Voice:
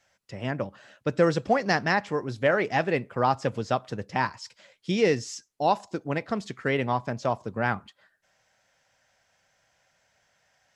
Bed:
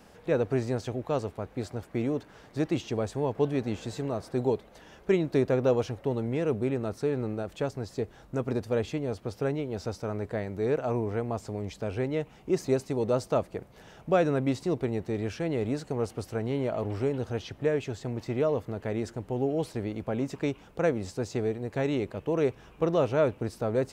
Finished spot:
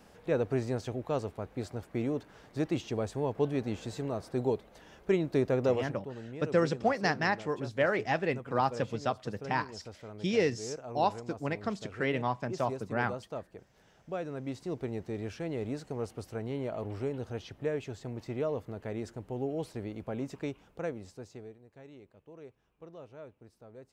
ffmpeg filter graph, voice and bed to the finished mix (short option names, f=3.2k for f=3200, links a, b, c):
-filter_complex "[0:a]adelay=5350,volume=-5dB[a];[1:a]volume=4dB,afade=t=out:st=5.7:d=0.29:silence=0.316228,afade=t=in:st=14.3:d=0.62:silence=0.446684,afade=t=out:st=20.3:d=1.34:silence=0.133352[b];[a][b]amix=inputs=2:normalize=0"